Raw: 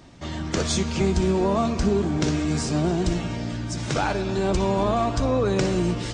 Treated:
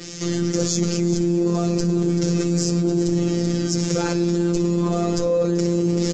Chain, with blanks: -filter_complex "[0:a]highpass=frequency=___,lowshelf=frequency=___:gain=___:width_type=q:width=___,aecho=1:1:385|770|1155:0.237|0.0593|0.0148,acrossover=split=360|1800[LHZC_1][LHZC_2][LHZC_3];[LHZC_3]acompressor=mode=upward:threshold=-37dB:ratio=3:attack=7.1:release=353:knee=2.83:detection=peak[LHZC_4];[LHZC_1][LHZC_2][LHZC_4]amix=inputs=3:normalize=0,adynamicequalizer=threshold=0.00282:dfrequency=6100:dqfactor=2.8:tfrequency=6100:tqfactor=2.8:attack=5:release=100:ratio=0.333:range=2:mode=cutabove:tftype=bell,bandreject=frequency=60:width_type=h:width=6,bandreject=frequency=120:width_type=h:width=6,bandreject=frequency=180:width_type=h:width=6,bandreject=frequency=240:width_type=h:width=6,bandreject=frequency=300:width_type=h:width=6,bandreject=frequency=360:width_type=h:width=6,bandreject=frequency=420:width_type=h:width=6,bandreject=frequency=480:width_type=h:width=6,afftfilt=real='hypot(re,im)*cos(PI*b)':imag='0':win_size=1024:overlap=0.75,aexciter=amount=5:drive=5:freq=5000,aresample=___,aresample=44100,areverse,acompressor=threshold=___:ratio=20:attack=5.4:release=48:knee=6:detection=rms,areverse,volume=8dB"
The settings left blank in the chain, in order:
53, 580, 7, 3, 16000, -24dB